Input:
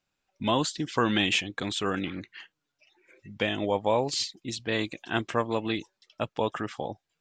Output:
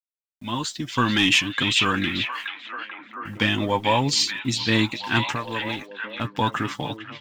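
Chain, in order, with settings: opening faded in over 1.37 s; gate -53 dBFS, range -17 dB; band shelf 540 Hz -9.5 dB 1.2 oct; 5.32–6.25 compressor 2.5:1, threshold -37 dBFS, peak gain reduction 9.5 dB; sample leveller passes 1; AGC gain up to 9.5 dB; bit-crush 9-bit; flange 0.73 Hz, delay 6.7 ms, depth 2.2 ms, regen +38%; delay with a stepping band-pass 0.438 s, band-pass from 2900 Hz, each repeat -0.7 oct, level -3.5 dB

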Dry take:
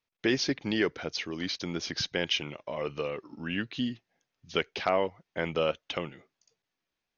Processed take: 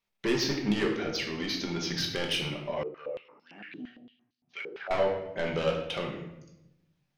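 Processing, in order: soft clip -24.5 dBFS, distortion -11 dB; shoebox room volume 310 m³, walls mixed, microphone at 1.2 m; 2.83–4.91 stepped band-pass 8.8 Hz 380–4400 Hz

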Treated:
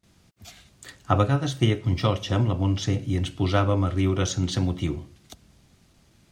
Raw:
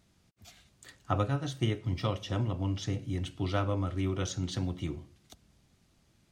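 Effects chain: gate with hold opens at -58 dBFS; gain +8.5 dB

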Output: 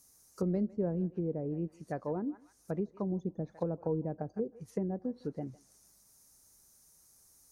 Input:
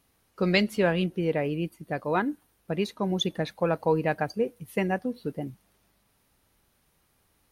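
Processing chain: resonant high shelf 4400 Hz +13.5 dB, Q 3; thinning echo 0.155 s, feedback 18%, high-pass 740 Hz, level -17.5 dB; treble ducked by the level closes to 420 Hz, closed at -23.5 dBFS; gain -5.5 dB

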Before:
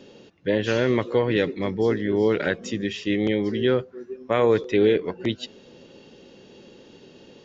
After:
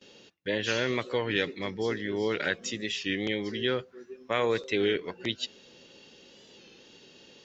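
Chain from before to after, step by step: gate with hold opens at -40 dBFS; tilt shelf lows -6.5 dB, about 1300 Hz; record warp 33 1/3 rpm, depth 100 cents; gain -3.5 dB

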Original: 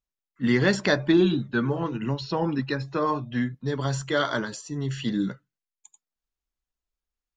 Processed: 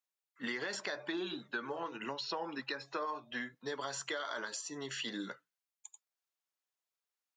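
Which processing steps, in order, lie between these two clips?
HPF 570 Hz 12 dB/oct; limiter -19.5 dBFS, peak gain reduction 9 dB; compressor 5:1, threshold -36 dBFS, peak gain reduction 10.5 dB

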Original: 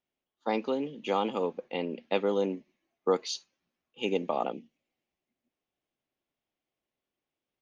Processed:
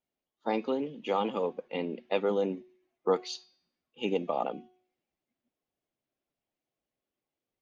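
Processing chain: bin magnitudes rounded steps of 15 dB; high shelf 5100 Hz -7.5 dB; de-hum 366.6 Hz, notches 17

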